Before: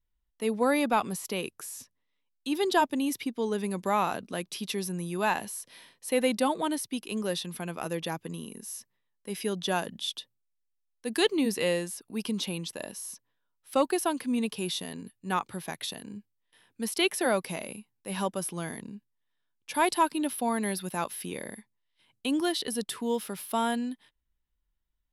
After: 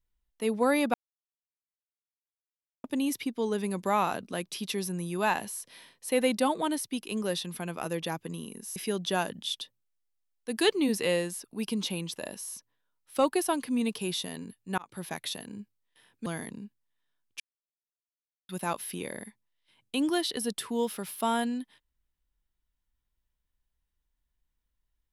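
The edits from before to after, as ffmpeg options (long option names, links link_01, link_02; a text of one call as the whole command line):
ffmpeg -i in.wav -filter_complex "[0:a]asplit=8[link_01][link_02][link_03][link_04][link_05][link_06][link_07][link_08];[link_01]atrim=end=0.94,asetpts=PTS-STARTPTS,afade=type=out:start_time=0.936:duration=0.004:curve=hsin[link_09];[link_02]atrim=start=0.94:end=2.84,asetpts=PTS-STARTPTS,volume=0[link_10];[link_03]atrim=start=2.84:end=8.762,asetpts=PTS-STARTPTS,afade=type=in:duration=0.004:curve=hsin[link_11];[link_04]atrim=start=9.328:end=15.35,asetpts=PTS-STARTPTS,afade=type=out:start_time=6.018:duration=0.004:curve=hsin[link_12];[link_05]atrim=start=15.35:end=16.832,asetpts=PTS-STARTPTS,afade=type=in:duration=0.26[link_13];[link_06]atrim=start=18.568:end=19.71,asetpts=PTS-STARTPTS,afade=type=out:start_time=1.138:duration=0.004:curve=hsin[link_14];[link_07]atrim=start=19.71:end=20.8,asetpts=PTS-STARTPTS,volume=0[link_15];[link_08]atrim=start=20.8,asetpts=PTS-STARTPTS,afade=type=in:duration=0.004:curve=hsin[link_16];[link_09][link_10][link_11]concat=n=3:v=0:a=1[link_17];[link_12][link_13]concat=n=2:v=0:a=1[link_18];[link_17][link_18]acrossfade=duration=0.004:curve1=hsin:curve2=hsin[link_19];[link_14][link_15][link_16]concat=n=3:v=0:a=1[link_20];[link_19][link_20]acrossfade=duration=0.004:curve1=hsin:curve2=hsin" out.wav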